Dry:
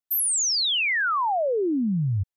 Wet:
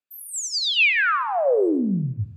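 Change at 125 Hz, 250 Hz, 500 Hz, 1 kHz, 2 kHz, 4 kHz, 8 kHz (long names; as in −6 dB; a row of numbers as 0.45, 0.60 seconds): −1.5, +2.0, +4.5, +0.5, +5.0, 0.0, −6.5 decibels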